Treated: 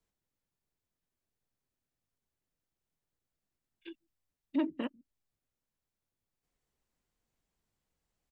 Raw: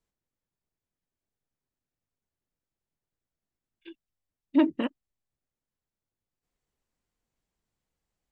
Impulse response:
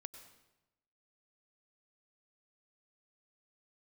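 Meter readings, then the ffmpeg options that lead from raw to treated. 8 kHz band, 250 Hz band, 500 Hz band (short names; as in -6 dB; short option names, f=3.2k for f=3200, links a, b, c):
n/a, -9.0 dB, -9.0 dB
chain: -filter_complex "[0:a]acrossover=split=170|550[a][b][c];[a]aecho=1:1:144:0.211[d];[d][b][c]amix=inputs=3:normalize=0,acompressor=threshold=-44dB:ratio=1.5"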